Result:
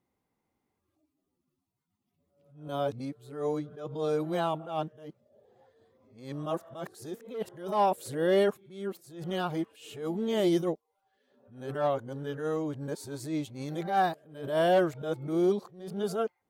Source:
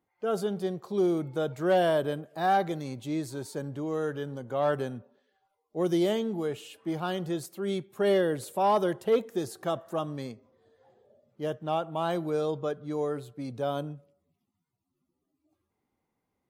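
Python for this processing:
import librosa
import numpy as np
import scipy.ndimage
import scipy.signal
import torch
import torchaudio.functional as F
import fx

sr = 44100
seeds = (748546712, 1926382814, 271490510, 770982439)

y = x[::-1].copy()
y = fx.attack_slew(y, sr, db_per_s=110.0)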